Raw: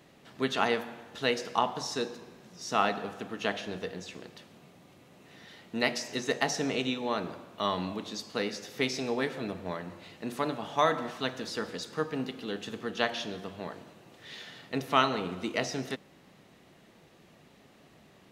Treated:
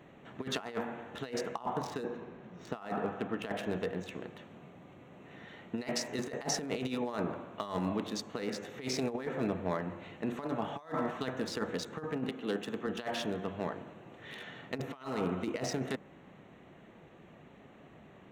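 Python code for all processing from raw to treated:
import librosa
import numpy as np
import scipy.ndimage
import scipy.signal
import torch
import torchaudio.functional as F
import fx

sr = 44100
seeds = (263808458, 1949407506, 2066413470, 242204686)

y = fx.chain(x, sr, fx.median_filter(points=5),
    fx.high_shelf(hz=6600.0, db=-10.0), at=(1.76, 3.59))
y = fx.chain(y, sr, fx.highpass(hz=160.0, slope=12),
    fx.band_widen(depth_pct=40), at=(12.29, 12.87))
y = fx.wiener(y, sr, points=9)
y = fx.dynamic_eq(y, sr, hz=3200.0, q=1.3, threshold_db=-49.0, ratio=4.0, max_db=-5)
y = fx.over_compress(y, sr, threshold_db=-34.0, ratio=-0.5)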